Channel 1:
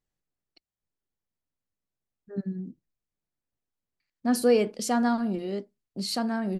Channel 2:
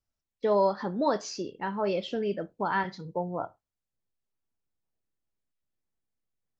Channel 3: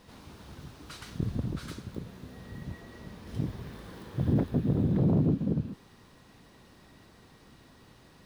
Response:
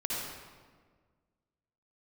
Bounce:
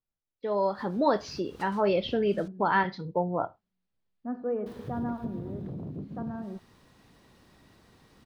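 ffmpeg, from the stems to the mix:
-filter_complex "[0:a]lowpass=f=1400:w=0.5412,lowpass=f=1400:w=1.3066,volume=0.282,asplit=2[s0][s1];[s1]volume=0.178[s2];[1:a]lowpass=f=4600:w=0.5412,lowpass=f=4600:w=1.3066,dynaudnorm=f=160:g=9:m=4.47,volume=0.376,asplit=2[s3][s4];[2:a]acompressor=threshold=0.0224:ratio=6,adelay=700,volume=0.708,asplit=3[s5][s6][s7];[s5]atrim=end=2.48,asetpts=PTS-STARTPTS,afade=t=out:st=2.476:d=0.004:c=hsin[s8];[s6]atrim=start=2.48:end=4.66,asetpts=PTS-STARTPTS,volume=0[s9];[s7]atrim=start=4.66,asetpts=PTS-STARTPTS,afade=t=in:d=0.004:c=hsin[s10];[s8][s9][s10]concat=n=3:v=0:a=1[s11];[s4]apad=whole_len=394933[s12];[s11][s12]sidechaincompress=threshold=0.0178:ratio=8:attack=6.9:release=148[s13];[3:a]atrim=start_sample=2205[s14];[s2][s14]afir=irnorm=-1:irlink=0[s15];[s0][s3][s13][s15]amix=inputs=4:normalize=0"

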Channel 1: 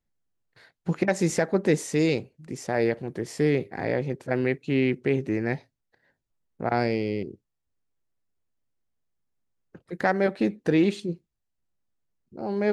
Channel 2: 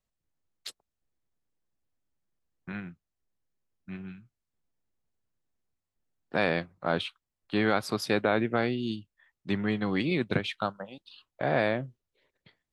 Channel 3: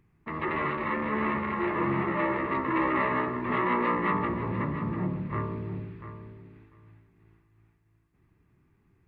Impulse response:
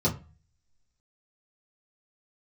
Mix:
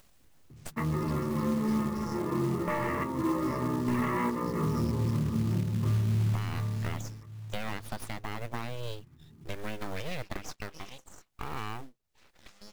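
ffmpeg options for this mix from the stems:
-filter_complex "[0:a]aeval=exprs='val(0)*sin(2*PI*260*n/s)':c=same,highpass=f=2800:t=q:w=5.1,volume=0.141[s0];[1:a]volume=0.944,asplit=2[s1][s2];[2:a]bass=f=250:g=3,treble=f=4000:g=-2,adelay=500,volume=1.19,asplit=2[s3][s4];[s4]volume=0.0944[s5];[s2]apad=whole_len=422229[s6];[s3][s6]sidechaingate=range=0.0794:threshold=0.00126:ratio=16:detection=peak[s7];[s0][s1]amix=inputs=2:normalize=0,aeval=exprs='abs(val(0))':c=same,acompressor=threshold=0.0316:ratio=6,volume=1[s8];[3:a]atrim=start_sample=2205[s9];[s5][s9]afir=irnorm=-1:irlink=0[s10];[s7][s8][s10]amix=inputs=3:normalize=0,acompressor=mode=upward:threshold=0.00891:ratio=2.5,acrusher=bits=5:mode=log:mix=0:aa=0.000001,alimiter=limit=0.0944:level=0:latency=1:release=170"

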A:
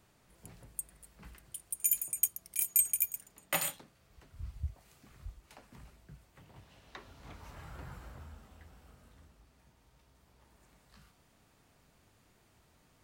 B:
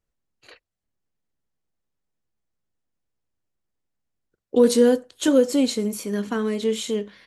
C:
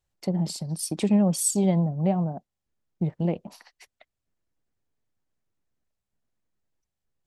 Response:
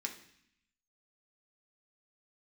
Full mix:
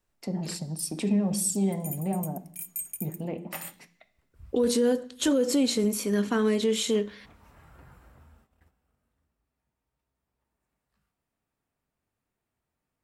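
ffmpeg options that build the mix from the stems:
-filter_complex "[0:a]agate=range=0.251:threshold=0.002:ratio=16:detection=peak,volume=0.562,asplit=2[s0][s1];[s1]volume=0.224[s2];[1:a]volume=1.06,asplit=2[s3][s4];[s4]volume=0.178[s5];[2:a]volume=0.75,asplit=2[s6][s7];[s7]volume=0.631[s8];[s0][s6]amix=inputs=2:normalize=0,equalizer=f=4900:w=1:g=-9,alimiter=level_in=1.12:limit=0.0631:level=0:latency=1:release=14,volume=0.891,volume=1[s9];[3:a]atrim=start_sample=2205[s10];[s2][s5][s8]amix=inputs=3:normalize=0[s11];[s11][s10]afir=irnorm=-1:irlink=0[s12];[s3][s9][s12]amix=inputs=3:normalize=0,alimiter=limit=0.158:level=0:latency=1:release=62"

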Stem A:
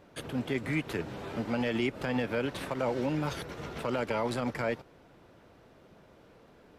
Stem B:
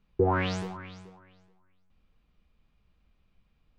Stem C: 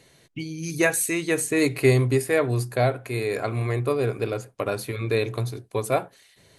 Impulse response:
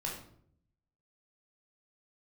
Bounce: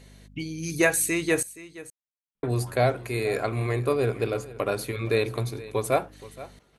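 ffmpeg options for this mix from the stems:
-filter_complex "[0:a]acompressor=threshold=0.0251:ratio=6,adelay=2500,volume=0.126,asplit=2[s0][s1];[s1]volume=0.562[s2];[1:a]adelay=2350,volume=0.106[s3];[2:a]aeval=exprs='val(0)+0.00501*(sin(2*PI*50*n/s)+sin(2*PI*2*50*n/s)/2+sin(2*PI*3*50*n/s)/3+sin(2*PI*4*50*n/s)/4+sin(2*PI*5*50*n/s)/5)':c=same,volume=1,asplit=3[s4][s5][s6];[s4]atrim=end=1.43,asetpts=PTS-STARTPTS,afade=t=out:st=1.426:d=0.004:c=hsin[s7];[s5]atrim=start=1.43:end=2.43,asetpts=PTS-STARTPTS,volume=0[s8];[s6]atrim=start=2.43,asetpts=PTS-STARTPTS,afade=t=in:d=0.004:c=hsin[s9];[s7][s8][s9]concat=n=3:v=0:a=1,asplit=3[s10][s11][s12];[s11]volume=0.133[s13];[s12]apad=whole_len=409602[s14];[s0][s14]sidechaingate=range=0.0224:threshold=0.0178:ratio=16:detection=peak[s15];[s2][s13]amix=inputs=2:normalize=0,aecho=0:1:472:1[s16];[s15][s3][s10][s16]amix=inputs=4:normalize=0,lowshelf=f=90:g=-6"

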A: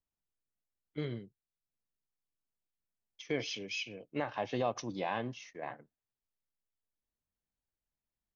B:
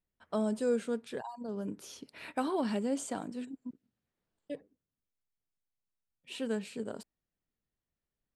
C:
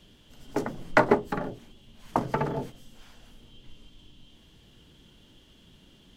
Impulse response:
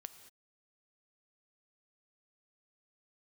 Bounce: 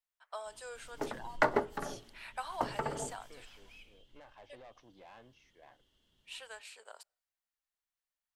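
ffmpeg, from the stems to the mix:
-filter_complex "[0:a]acrossover=split=3100[s0][s1];[s1]acompressor=threshold=0.00141:ratio=4:attack=1:release=60[s2];[s0][s2]amix=inputs=2:normalize=0,asoftclip=type=tanh:threshold=0.0224,volume=0.188[s3];[1:a]highpass=f=730:w=0.5412,highpass=f=730:w=1.3066,volume=0.794,asplit=2[s4][s5];[s5]volume=0.0794[s6];[2:a]bandreject=f=2400:w=12,adelay=450,volume=0.398,afade=t=out:st=3.66:d=0.57:silence=0.334965,asplit=2[s7][s8];[s8]volume=0.398[s9];[3:a]atrim=start_sample=2205[s10];[s6][s9]amix=inputs=2:normalize=0[s11];[s11][s10]afir=irnorm=-1:irlink=0[s12];[s3][s4][s7][s12]amix=inputs=4:normalize=0,equalizer=f=180:t=o:w=1.8:g=-7.5"

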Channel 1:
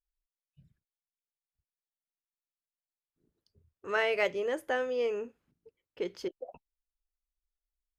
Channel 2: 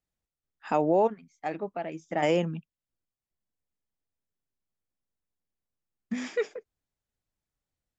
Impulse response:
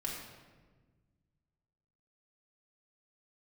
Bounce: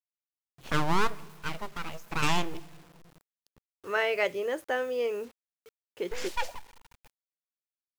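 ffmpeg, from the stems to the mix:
-filter_complex "[0:a]volume=1.19[s0];[1:a]aeval=exprs='abs(val(0))':c=same,adynamicequalizer=threshold=0.00501:dfrequency=2600:dqfactor=0.7:tfrequency=2600:tqfactor=0.7:attack=5:release=100:ratio=0.375:range=4:mode=boostabove:tftype=highshelf,volume=0.944,asplit=2[s1][s2];[s2]volume=0.15[s3];[2:a]atrim=start_sample=2205[s4];[s3][s4]afir=irnorm=-1:irlink=0[s5];[s0][s1][s5]amix=inputs=3:normalize=0,equalizer=f=120:w=2.5:g=3.5,acrusher=bits=8:mix=0:aa=0.000001,lowshelf=f=230:g=-4"

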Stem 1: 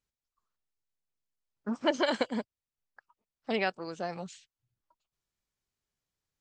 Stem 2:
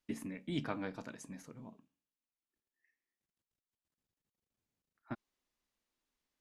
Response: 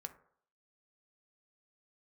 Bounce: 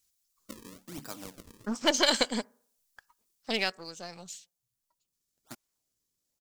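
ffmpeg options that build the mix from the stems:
-filter_complex "[0:a]aeval=exprs='if(lt(val(0),0),0.708*val(0),val(0))':c=same,highshelf=f=2200:g=10,volume=0.891,afade=t=out:st=3.27:d=0.67:silence=0.354813,asplit=3[s0][s1][s2];[s1]volume=0.316[s3];[1:a]lowshelf=f=220:g=-6.5,acrusher=samples=35:mix=1:aa=0.000001:lfo=1:lforange=56:lforate=1.1,adelay=400,volume=0.631[s4];[s2]apad=whole_len=299935[s5];[s4][s5]sidechaincompress=threshold=0.00562:ratio=8:attack=16:release=1160[s6];[2:a]atrim=start_sample=2205[s7];[s3][s7]afir=irnorm=-1:irlink=0[s8];[s0][s6][s8]amix=inputs=3:normalize=0,bass=f=250:g=1,treble=f=4000:g=11"

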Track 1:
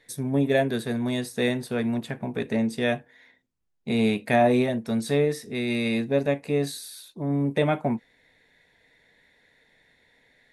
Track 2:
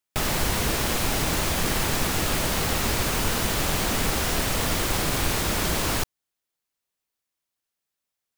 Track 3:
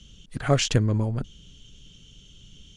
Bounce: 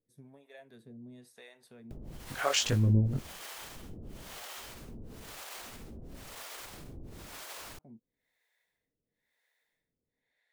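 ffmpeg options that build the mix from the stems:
-filter_complex "[0:a]acompressor=threshold=0.0398:ratio=6,volume=0.15[s0];[1:a]alimiter=limit=0.075:level=0:latency=1:release=108,adelay=1750,volume=0.891[s1];[2:a]flanger=delay=17.5:depth=5.2:speed=1.1,adelay=1950,volume=1.19[s2];[s0][s1]amix=inputs=2:normalize=0,acompressor=threshold=0.0112:ratio=6,volume=1[s3];[s2][s3]amix=inputs=2:normalize=0,acrossover=split=480[s4][s5];[s4]aeval=exprs='val(0)*(1-1/2+1/2*cos(2*PI*1*n/s))':c=same[s6];[s5]aeval=exprs='val(0)*(1-1/2-1/2*cos(2*PI*1*n/s))':c=same[s7];[s6][s7]amix=inputs=2:normalize=0"

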